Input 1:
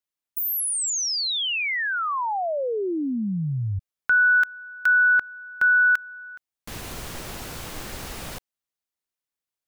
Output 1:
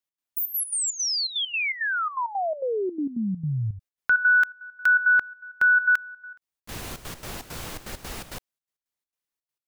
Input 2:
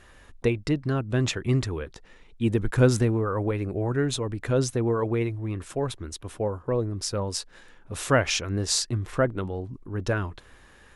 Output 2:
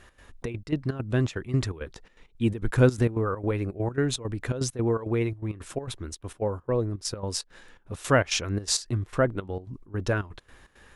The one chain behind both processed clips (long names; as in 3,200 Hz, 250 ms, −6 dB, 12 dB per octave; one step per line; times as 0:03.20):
gate pattern "x.xxx.x.x" 166 BPM −12 dB